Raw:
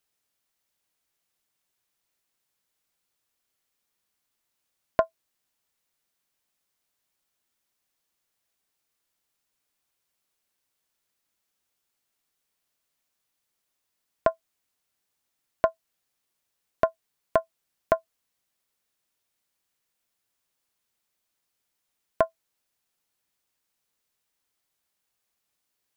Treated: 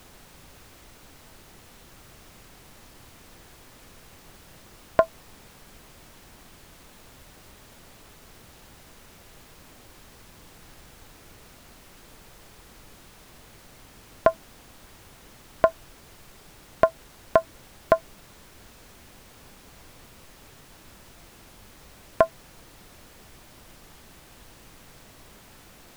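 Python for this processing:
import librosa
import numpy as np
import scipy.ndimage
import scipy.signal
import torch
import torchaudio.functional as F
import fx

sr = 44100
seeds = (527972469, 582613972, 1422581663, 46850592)

y = fx.dmg_noise_colour(x, sr, seeds[0], colour='pink', level_db=-54.0)
y = y * 10.0 ** (4.0 / 20.0)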